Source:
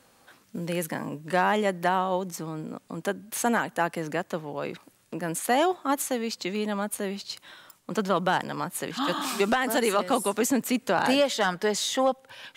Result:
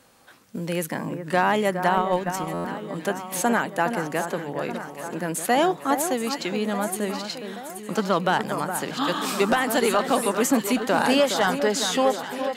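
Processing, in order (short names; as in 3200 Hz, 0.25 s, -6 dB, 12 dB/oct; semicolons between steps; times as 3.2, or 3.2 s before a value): echo with dull and thin repeats by turns 0.414 s, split 1800 Hz, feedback 75%, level -8 dB; 1.97–2.49 transient shaper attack +12 dB, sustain -5 dB; stuck buffer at 2.53, samples 512, times 9; gain +2.5 dB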